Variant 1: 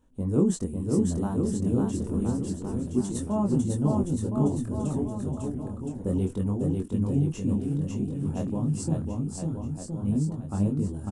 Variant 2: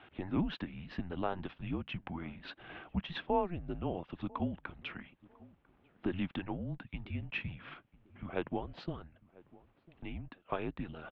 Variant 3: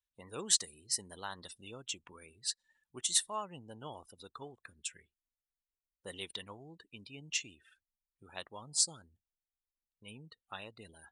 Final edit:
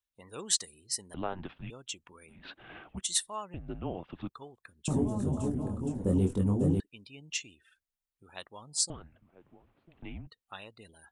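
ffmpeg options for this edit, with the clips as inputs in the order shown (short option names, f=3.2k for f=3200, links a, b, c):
-filter_complex "[1:a]asplit=4[a][b][c][d];[2:a]asplit=6[e][f][g][h][i][j];[e]atrim=end=1.142[k];[a]atrim=start=1.138:end=1.702[l];[f]atrim=start=1.698:end=2.43[m];[b]atrim=start=2.27:end=3.05[n];[g]atrim=start=2.89:end=3.542[o];[c]atrim=start=3.538:end=4.292[p];[h]atrim=start=4.288:end=4.882[q];[0:a]atrim=start=4.878:end=6.802[r];[i]atrim=start=6.798:end=8.902[s];[d]atrim=start=8.898:end=10.272[t];[j]atrim=start=10.268[u];[k][l]acrossfade=d=0.004:c1=hsin:c2=hsin[v];[v][m]acrossfade=d=0.004:c1=hsin:c2=hsin[w];[w][n]acrossfade=d=0.16:c1=tri:c2=tri[x];[x][o]acrossfade=d=0.16:c1=tri:c2=tri[y];[y][p]acrossfade=d=0.004:c1=hsin:c2=hsin[z];[z][q]acrossfade=d=0.004:c1=hsin:c2=hsin[aa];[aa][r]acrossfade=d=0.004:c1=hsin:c2=hsin[ab];[ab][s]acrossfade=d=0.004:c1=hsin:c2=hsin[ac];[ac][t]acrossfade=d=0.004:c1=hsin:c2=hsin[ad];[ad][u]acrossfade=d=0.004:c1=hsin:c2=hsin"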